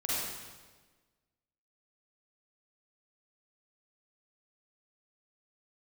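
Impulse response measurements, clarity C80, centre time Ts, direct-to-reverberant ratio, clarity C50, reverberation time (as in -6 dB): -1.0 dB, 117 ms, -8.0 dB, -5.0 dB, 1.4 s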